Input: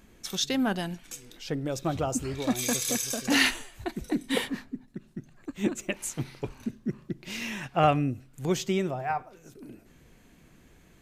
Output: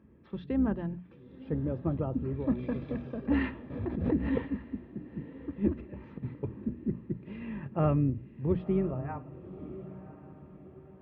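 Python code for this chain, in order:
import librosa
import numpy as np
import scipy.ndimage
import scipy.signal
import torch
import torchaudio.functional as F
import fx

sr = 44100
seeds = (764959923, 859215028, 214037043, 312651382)

y = fx.octave_divider(x, sr, octaves=2, level_db=-5.0)
y = scipy.ndimage.gaussian_filter1d(y, 3.7, mode='constant')
y = fx.hum_notches(y, sr, base_hz=60, count=4)
y = fx.notch_comb(y, sr, f0_hz=740.0)
y = fx.over_compress(y, sr, threshold_db=-38.0, ratio=-0.5, at=(5.77, 6.34))
y = scipy.signal.sosfilt(scipy.signal.butter(4, 70.0, 'highpass', fs=sr, output='sos'), y)
y = fx.tilt_eq(y, sr, slope=-3.0)
y = fx.echo_diffused(y, sr, ms=1034, feedback_pct=43, wet_db=-15.0)
y = fx.pre_swell(y, sr, db_per_s=54.0, at=(3.7, 4.46))
y = F.gain(torch.from_numpy(y), -6.0).numpy()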